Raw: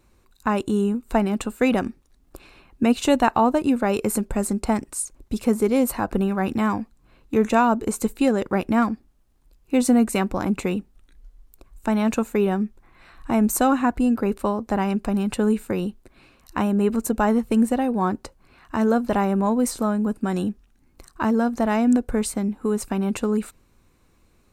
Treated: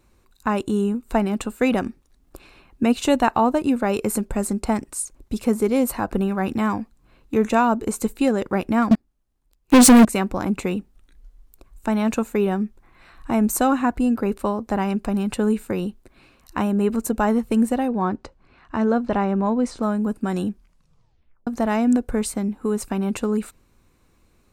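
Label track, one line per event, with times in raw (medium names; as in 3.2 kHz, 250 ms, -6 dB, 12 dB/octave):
8.910000	10.050000	waveshaping leveller passes 5
17.880000	19.830000	distance through air 110 m
20.500000	20.500000	tape stop 0.97 s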